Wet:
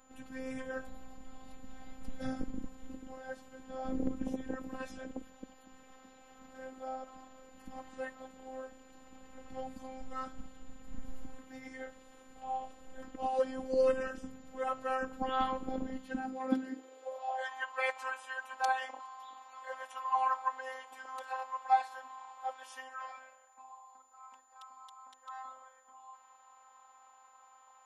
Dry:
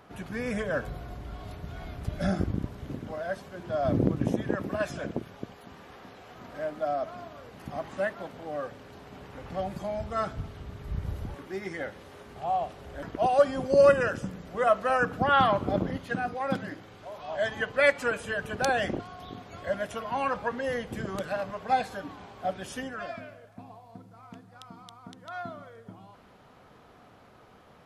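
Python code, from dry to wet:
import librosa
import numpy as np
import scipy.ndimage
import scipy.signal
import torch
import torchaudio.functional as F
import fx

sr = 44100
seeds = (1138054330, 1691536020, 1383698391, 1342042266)

y = x + 10.0 ** (-58.0 / 20.0) * np.sin(2.0 * np.pi * 7000.0 * np.arange(len(x)) / sr)
y = fx.filter_sweep_highpass(y, sr, from_hz=71.0, to_hz=930.0, start_s=15.61, end_s=17.49, q=6.8)
y = fx.robotise(y, sr, hz=261.0)
y = y * 10.0 ** (-8.5 / 20.0)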